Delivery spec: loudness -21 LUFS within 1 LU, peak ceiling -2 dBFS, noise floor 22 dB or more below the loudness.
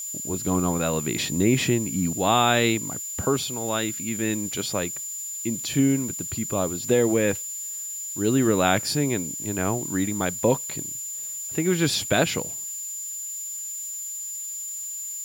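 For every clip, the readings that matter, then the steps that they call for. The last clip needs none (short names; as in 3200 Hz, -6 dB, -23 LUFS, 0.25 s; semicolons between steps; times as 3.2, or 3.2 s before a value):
steady tone 7100 Hz; tone level -31 dBFS; noise floor -34 dBFS; noise floor target -47 dBFS; loudness -25.0 LUFS; peak -6.5 dBFS; loudness target -21.0 LUFS
-> notch 7100 Hz, Q 30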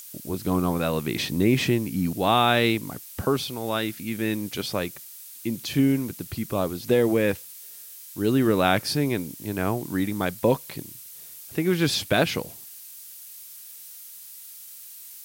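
steady tone none; noise floor -43 dBFS; noise floor target -47 dBFS
-> denoiser 6 dB, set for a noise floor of -43 dBFS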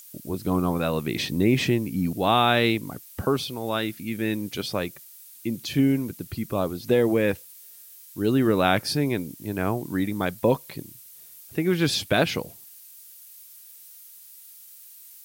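noise floor -48 dBFS; loudness -25.0 LUFS; peak -7.0 dBFS; loudness target -21.0 LUFS
-> gain +4 dB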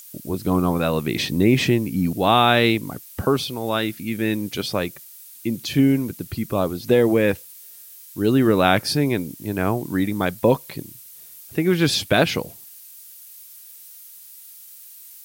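loudness -21.0 LUFS; peak -3.0 dBFS; noise floor -44 dBFS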